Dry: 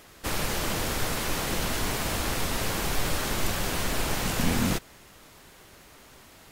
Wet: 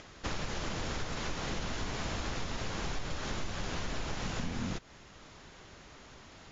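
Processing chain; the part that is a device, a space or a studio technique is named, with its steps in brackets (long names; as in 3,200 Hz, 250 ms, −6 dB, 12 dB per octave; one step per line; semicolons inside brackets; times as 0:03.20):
Chebyshev low-pass filter 7,200 Hz, order 10
bass and treble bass +3 dB, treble −1 dB
upward and downward compression (upward compression, threshold −46 dBFS; downward compressor, threshold −30 dBFS, peak gain reduction 12.5 dB)
level −2 dB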